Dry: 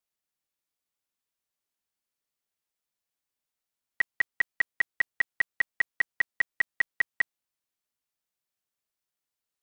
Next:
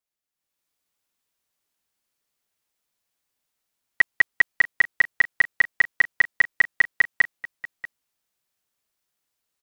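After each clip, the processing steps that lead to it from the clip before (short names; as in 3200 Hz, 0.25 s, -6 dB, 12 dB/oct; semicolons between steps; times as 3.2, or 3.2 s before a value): AGC gain up to 10 dB; echo 0.637 s -17.5 dB; gain -2 dB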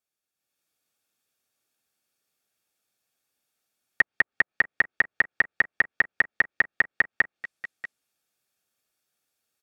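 treble ducked by the level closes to 1200 Hz, closed at -16 dBFS; notch comb 1000 Hz; gain +2.5 dB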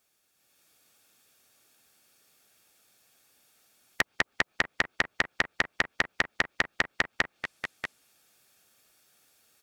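spectral compressor 2:1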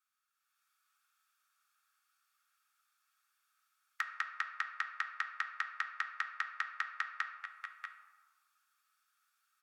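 ladder high-pass 1200 Hz, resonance 75%; on a send at -6 dB: reverb RT60 1.6 s, pre-delay 4 ms; on the sum: gain -4.5 dB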